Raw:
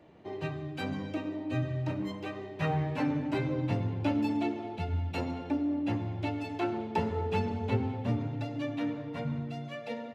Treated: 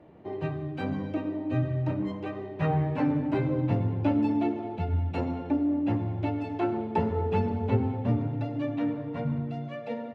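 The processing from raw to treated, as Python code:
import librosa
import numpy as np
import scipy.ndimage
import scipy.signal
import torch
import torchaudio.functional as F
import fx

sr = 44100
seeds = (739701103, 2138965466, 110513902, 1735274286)

y = fx.lowpass(x, sr, hz=1200.0, slope=6)
y = y * librosa.db_to_amplitude(4.5)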